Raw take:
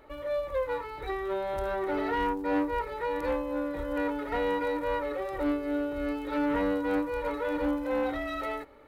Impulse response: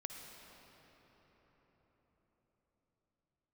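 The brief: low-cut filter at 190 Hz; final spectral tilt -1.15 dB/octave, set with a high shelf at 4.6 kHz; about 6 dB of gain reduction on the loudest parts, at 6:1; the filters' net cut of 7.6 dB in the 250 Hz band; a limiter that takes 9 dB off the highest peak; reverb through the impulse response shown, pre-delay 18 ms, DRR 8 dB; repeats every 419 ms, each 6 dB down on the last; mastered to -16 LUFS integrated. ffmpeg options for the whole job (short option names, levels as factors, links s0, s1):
-filter_complex "[0:a]highpass=190,equalizer=f=250:t=o:g=-8.5,highshelf=f=4600:g=8,acompressor=threshold=0.0224:ratio=6,alimiter=level_in=2.82:limit=0.0631:level=0:latency=1,volume=0.355,aecho=1:1:419|838|1257|1676|2095|2514:0.501|0.251|0.125|0.0626|0.0313|0.0157,asplit=2[s0][s1];[1:a]atrim=start_sample=2205,adelay=18[s2];[s1][s2]afir=irnorm=-1:irlink=0,volume=0.501[s3];[s0][s3]amix=inputs=2:normalize=0,volume=15"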